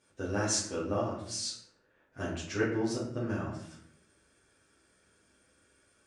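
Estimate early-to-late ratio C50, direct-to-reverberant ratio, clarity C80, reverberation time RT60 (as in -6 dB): 4.0 dB, -8.5 dB, 7.5 dB, 0.70 s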